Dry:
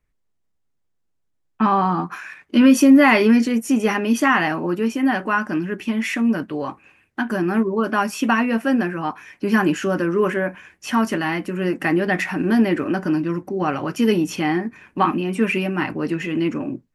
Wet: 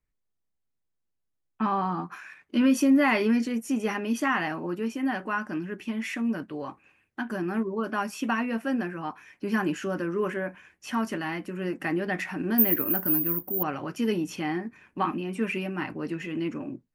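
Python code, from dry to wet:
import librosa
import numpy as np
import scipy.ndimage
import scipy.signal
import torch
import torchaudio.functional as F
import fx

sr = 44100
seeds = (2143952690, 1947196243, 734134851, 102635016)

y = fx.resample_bad(x, sr, factor=3, down='filtered', up='zero_stuff', at=(12.58, 13.63))
y = y * 10.0 ** (-9.0 / 20.0)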